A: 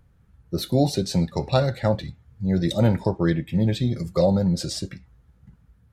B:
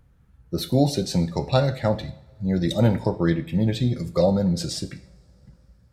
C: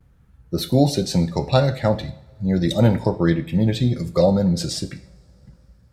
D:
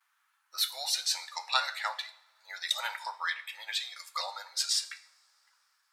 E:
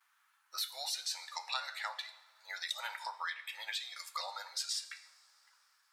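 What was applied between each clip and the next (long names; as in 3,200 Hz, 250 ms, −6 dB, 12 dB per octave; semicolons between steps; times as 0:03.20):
coupled-rooms reverb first 0.59 s, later 3.7 s, from −26 dB, DRR 11.5 dB
noise gate with hold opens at −50 dBFS; level +3 dB
Butterworth high-pass 1,000 Hz 36 dB per octave
downward compressor 2.5 to 1, threshold −40 dBFS, peak gain reduction 12.5 dB; level +1 dB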